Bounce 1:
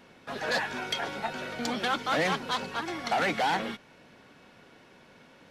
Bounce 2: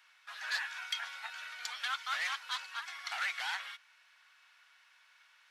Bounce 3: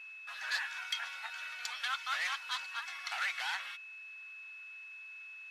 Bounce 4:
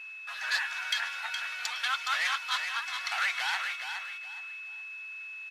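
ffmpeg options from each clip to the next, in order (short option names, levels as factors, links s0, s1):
-af "highpass=f=1200:w=0.5412,highpass=f=1200:w=1.3066,volume=0.596"
-af "acontrast=39,aeval=exprs='val(0)+0.00891*sin(2*PI*2600*n/s)':c=same,volume=0.531"
-af "aecho=1:1:417|834|1251:0.447|0.125|0.035,volume=1.88"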